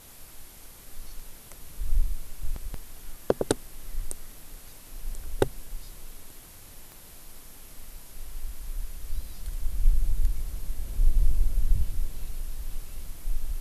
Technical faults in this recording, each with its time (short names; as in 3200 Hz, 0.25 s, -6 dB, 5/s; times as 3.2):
6.92 pop -31 dBFS